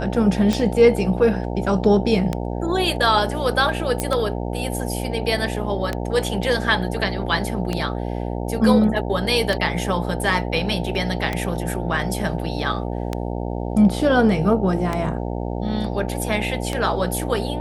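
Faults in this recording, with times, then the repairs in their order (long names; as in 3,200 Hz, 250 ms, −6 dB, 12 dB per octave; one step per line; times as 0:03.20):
mains buzz 60 Hz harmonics 15 −26 dBFS
scratch tick 33 1/3 rpm
0:04.00: click −7 dBFS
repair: click removal
hum removal 60 Hz, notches 15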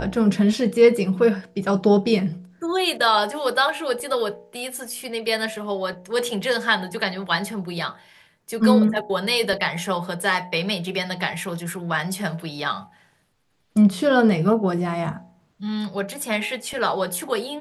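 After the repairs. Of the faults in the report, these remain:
none of them is left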